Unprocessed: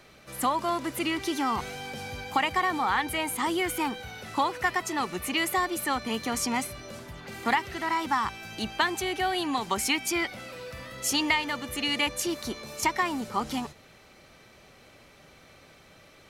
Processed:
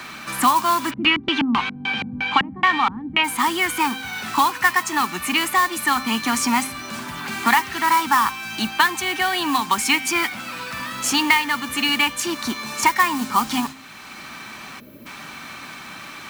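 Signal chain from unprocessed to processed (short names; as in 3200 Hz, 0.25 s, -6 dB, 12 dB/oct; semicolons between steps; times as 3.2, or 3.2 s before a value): vocal rider within 5 dB 2 s; graphic EQ 250/500/1000/2000/4000/8000 Hz +10/-12/+11/+9/+4/+6 dB; modulation noise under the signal 16 dB; low shelf 84 Hz -8.5 dB; notch 2000 Hz, Q 9.3; de-hum 264.8 Hz, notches 32; 0.9–3.23 LFO low-pass square 4.8 Hz -> 1.6 Hz 220–3000 Hz; 14.8–15.06 spectral gain 650–11000 Hz -21 dB; three-band squash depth 40%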